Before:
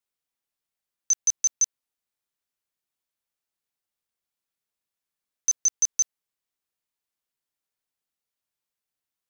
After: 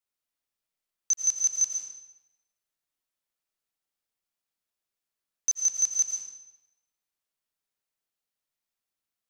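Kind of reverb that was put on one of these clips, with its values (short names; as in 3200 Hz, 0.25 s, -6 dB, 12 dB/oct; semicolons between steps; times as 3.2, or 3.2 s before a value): digital reverb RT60 1 s, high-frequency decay 0.9×, pre-delay 70 ms, DRR 1.5 dB; gain -3 dB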